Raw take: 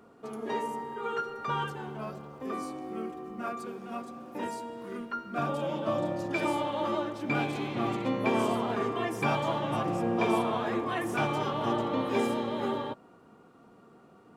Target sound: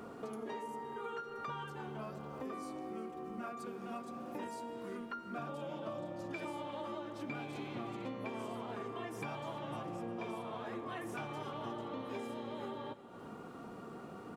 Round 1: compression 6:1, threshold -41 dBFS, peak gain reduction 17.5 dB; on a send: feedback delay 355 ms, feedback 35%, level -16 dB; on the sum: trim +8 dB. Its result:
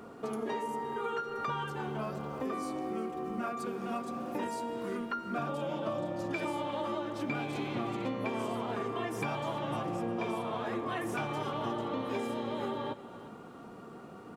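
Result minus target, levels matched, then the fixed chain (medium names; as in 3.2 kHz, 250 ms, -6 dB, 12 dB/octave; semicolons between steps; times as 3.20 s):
compression: peak gain reduction -7.5 dB
compression 6:1, threshold -50 dBFS, peak gain reduction 25 dB; on a send: feedback delay 355 ms, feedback 35%, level -16 dB; on the sum: trim +8 dB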